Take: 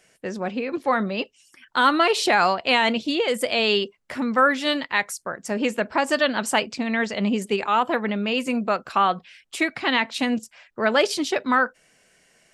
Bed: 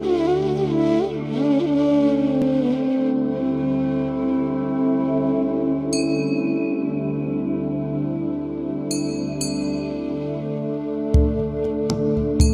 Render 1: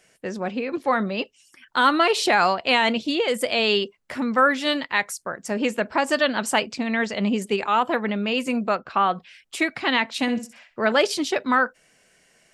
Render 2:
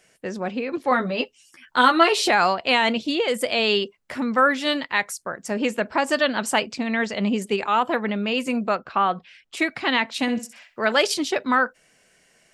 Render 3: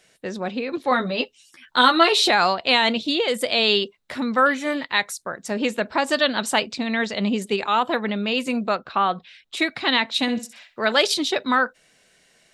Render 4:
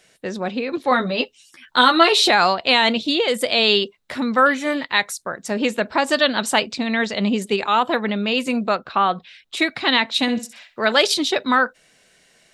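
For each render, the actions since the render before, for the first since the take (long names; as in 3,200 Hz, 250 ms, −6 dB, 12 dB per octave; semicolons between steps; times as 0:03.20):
0:08.75–0:09.15: high-frequency loss of the air 170 metres; 0:10.21–0:10.92: flutter between parallel walls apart 10.9 metres, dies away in 0.3 s
0:00.90–0:02.30: double-tracking delay 12 ms −3 dB; 0:08.89–0:09.57: high-frequency loss of the air 60 metres; 0:10.39–0:11.14: spectral tilt +1.5 dB per octave
0:04.49–0:04.81: healed spectral selection 2,600–5,500 Hz after; parametric band 3,800 Hz +10.5 dB 0.3 octaves
level +2.5 dB; brickwall limiter −3 dBFS, peak gain reduction 3 dB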